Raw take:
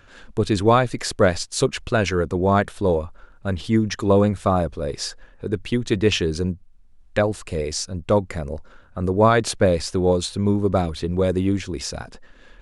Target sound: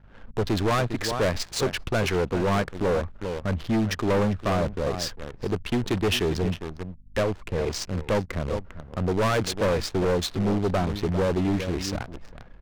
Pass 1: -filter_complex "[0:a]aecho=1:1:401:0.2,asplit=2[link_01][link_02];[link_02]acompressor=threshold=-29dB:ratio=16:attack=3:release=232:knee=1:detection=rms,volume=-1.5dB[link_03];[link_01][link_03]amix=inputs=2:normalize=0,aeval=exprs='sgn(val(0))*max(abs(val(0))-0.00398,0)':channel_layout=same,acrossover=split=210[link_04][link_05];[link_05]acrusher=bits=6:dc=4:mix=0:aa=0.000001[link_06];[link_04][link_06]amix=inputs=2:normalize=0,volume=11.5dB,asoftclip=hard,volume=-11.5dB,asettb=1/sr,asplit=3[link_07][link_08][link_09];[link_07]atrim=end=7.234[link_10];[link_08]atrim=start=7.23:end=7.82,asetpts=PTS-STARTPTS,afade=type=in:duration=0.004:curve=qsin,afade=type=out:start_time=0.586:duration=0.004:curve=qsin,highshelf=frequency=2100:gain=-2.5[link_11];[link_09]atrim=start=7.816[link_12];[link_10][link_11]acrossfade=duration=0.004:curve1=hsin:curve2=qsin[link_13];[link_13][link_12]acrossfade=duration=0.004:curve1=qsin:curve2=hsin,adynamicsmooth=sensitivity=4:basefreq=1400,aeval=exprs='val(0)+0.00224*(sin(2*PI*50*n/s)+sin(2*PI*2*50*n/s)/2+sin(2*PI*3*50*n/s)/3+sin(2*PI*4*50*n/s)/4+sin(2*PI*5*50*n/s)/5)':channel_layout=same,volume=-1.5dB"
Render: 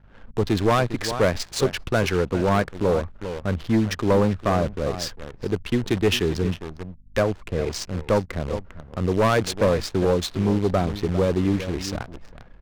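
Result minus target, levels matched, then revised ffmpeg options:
gain into a clipping stage and back: distortion −6 dB
-filter_complex "[0:a]aecho=1:1:401:0.2,asplit=2[link_01][link_02];[link_02]acompressor=threshold=-29dB:ratio=16:attack=3:release=232:knee=1:detection=rms,volume=-1.5dB[link_03];[link_01][link_03]amix=inputs=2:normalize=0,aeval=exprs='sgn(val(0))*max(abs(val(0))-0.00398,0)':channel_layout=same,acrossover=split=210[link_04][link_05];[link_05]acrusher=bits=6:dc=4:mix=0:aa=0.000001[link_06];[link_04][link_06]amix=inputs=2:normalize=0,volume=18dB,asoftclip=hard,volume=-18dB,asettb=1/sr,asplit=3[link_07][link_08][link_09];[link_07]atrim=end=7.234[link_10];[link_08]atrim=start=7.23:end=7.82,asetpts=PTS-STARTPTS,afade=type=in:duration=0.004:curve=qsin,afade=type=out:start_time=0.586:duration=0.004:curve=qsin,highshelf=frequency=2100:gain=-2.5[link_11];[link_09]atrim=start=7.816[link_12];[link_10][link_11]acrossfade=duration=0.004:curve1=hsin:curve2=qsin[link_13];[link_13][link_12]acrossfade=duration=0.004:curve1=qsin:curve2=hsin,adynamicsmooth=sensitivity=4:basefreq=1400,aeval=exprs='val(0)+0.00224*(sin(2*PI*50*n/s)+sin(2*PI*2*50*n/s)/2+sin(2*PI*3*50*n/s)/3+sin(2*PI*4*50*n/s)/4+sin(2*PI*5*50*n/s)/5)':channel_layout=same,volume=-1.5dB"

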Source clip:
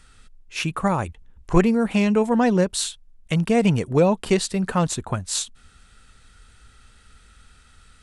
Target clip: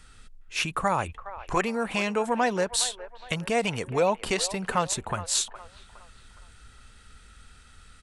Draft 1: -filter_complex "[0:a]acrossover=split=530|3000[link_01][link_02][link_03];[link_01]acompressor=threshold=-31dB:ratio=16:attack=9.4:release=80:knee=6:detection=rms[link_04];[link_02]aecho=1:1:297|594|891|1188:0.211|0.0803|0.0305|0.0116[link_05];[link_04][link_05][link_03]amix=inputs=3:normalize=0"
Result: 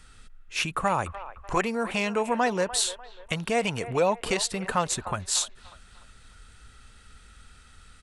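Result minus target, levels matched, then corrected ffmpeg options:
echo 117 ms early
-filter_complex "[0:a]acrossover=split=530|3000[link_01][link_02][link_03];[link_01]acompressor=threshold=-31dB:ratio=16:attack=9.4:release=80:knee=6:detection=rms[link_04];[link_02]aecho=1:1:414|828|1242|1656:0.211|0.0803|0.0305|0.0116[link_05];[link_04][link_05][link_03]amix=inputs=3:normalize=0"

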